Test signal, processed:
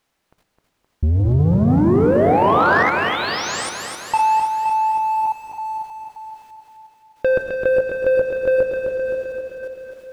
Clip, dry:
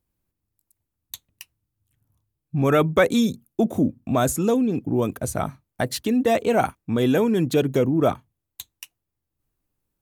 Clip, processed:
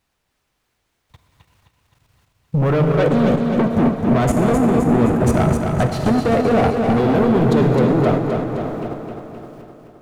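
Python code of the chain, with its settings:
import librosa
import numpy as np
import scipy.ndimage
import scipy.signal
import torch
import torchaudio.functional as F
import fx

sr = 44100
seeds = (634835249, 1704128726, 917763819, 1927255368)

y = fx.rider(x, sr, range_db=5, speed_s=0.5)
y = fx.env_lowpass(y, sr, base_hz=1000.0, full_db=-20.5)
y = fx.low_shelf(y, sr, hz=440.0, db=7.5)
y = 10.0 ** (-20.0 / 20.0) * np.tanh(y / 10.0 ** (-20.0 / 20.0))
y = fx.peak_eq(y, sr, hz=270.0, db=-3.5, octaves=0.32)
y = fx.rev_plate(y, sr, seeds[0], rt60_s=3.5, hf_ratio=0.6, predelay_ms=0, drr_db=2.5)
y = fx.quant_dither(y, sr, seeds[1], bits=10, dither='triangular')
y = fx.lowpass(y, sr, hz=2000.0, slope=6)
y = fx.level_steps(y, sr, step_db=13)
y = fx.leveller(y, sr, passes=1)
y = fx.echo_feedback(y, sr, ms=260, feedback_pct=59, wet_db=-5.5)
y = y * librosa.db_to_amplitude(7.5)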